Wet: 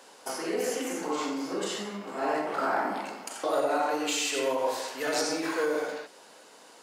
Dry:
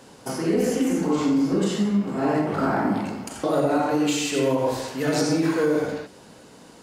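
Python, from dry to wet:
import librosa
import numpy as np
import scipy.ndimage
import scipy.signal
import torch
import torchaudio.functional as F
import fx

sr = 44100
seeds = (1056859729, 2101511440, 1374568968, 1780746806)

y = scipy.signal.sosfilt(scipy.signal.butter(2, 540.0, 'highpass', fs=sr, output='sos'), x)
y = y * librosa.db_to_amplitude(-1.5)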